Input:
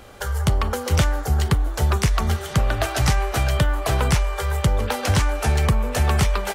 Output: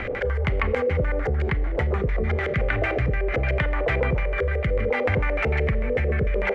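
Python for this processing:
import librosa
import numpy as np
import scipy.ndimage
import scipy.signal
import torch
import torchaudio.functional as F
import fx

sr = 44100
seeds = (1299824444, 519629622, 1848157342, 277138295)

y = fx.filter_lfo_lowpass(x, sr, shape='square', hz=6.7, low_hz=490.0, high_hz=2100.0, q=6.6)
y = fx.rotary_switch(y, sr, hz=6.0, then_hz=0.7, switch_at_s=1.96)
y = fx.rev_schroeder(y, sr, rt60_s=0.68, comb_ms=26, drr_db=17.0)
y = fx.env_flatten(y, sr, amount_pct=70)
y = y * librosa.db_to_amplitude(-7.0)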